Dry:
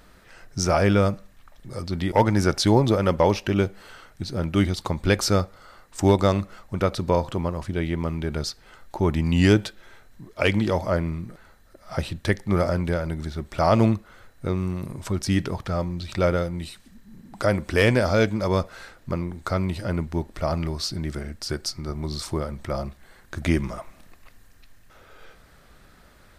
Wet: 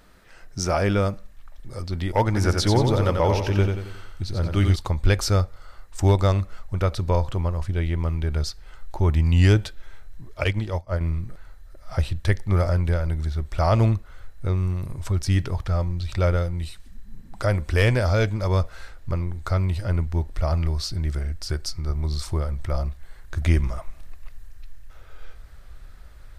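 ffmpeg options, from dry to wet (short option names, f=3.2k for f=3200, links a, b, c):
-filter_complex "[0:a]asettb=1/sr,asplit=3[a][b][c];[a]atrim=end=2.254[d];[b]atrim=start=2.25:end=4.76,asetpts=PTS-STARTPTS,afade=t=in:d=0.004:c=qsin,afade=t=out:st=2.506:d=0.004:c=qsin,aecho=1:1:90|180|270|360|450:0.562|0.247|0.109|0.0479|0.0211,atrim=end_sample=110691[e];[c]atrim=start=4.756[f];[d][e]acrossfade=d=0.004:c1=hsin:c2=qsin[g];[g][f]acrossfade=d=0.004:c1=qsin:c2=hsin,asettb=1/sr,asplit=3[h][i][j];[h]atrim=end=10.444[k];[i]atrim=start=10.44:end=11.01,asetpts=PTS-STARTPTS,afade=t=in:d=0.004:c=qsin,afade=t=out:st=0.566:d=0.004:c=qsin,agate=range=-33dB:threshold=-18dB:ratio=3:release=100:detection=peak[l];[j]atrim=start=11.006[m];[k][l]acrossfade=d=0.004:c1=hsin:c2=qsin[n];[n][m]acrossfade=d=0.004:c1=qsin:c2=hsin,asubboost=boost=7.5:cutoff=75,volume=-2dB"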